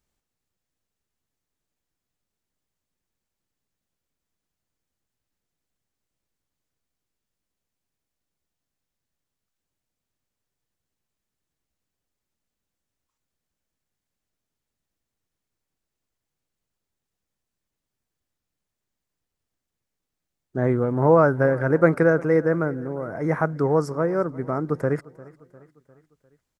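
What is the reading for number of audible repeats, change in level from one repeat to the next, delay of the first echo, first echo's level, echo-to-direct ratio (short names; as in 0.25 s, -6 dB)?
3, -5.5 dB, 0.351 s, -21.5 dB, -20.0 dB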